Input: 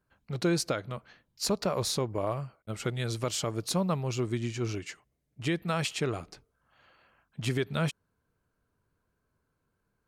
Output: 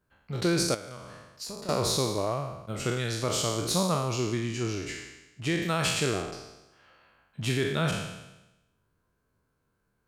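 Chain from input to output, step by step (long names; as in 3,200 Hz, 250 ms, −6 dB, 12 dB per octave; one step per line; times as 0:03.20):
peak hold with a decay on every bin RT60 0.99 s
0:00.74–0:01.69: downward compressor 6 to 1, threshold −38 dBFS, peak gain reduction 15.5 dB
0:05.61–0:06.21: high-shelf EQ 4,800 Hz → 9,200 Hz +5.5 dB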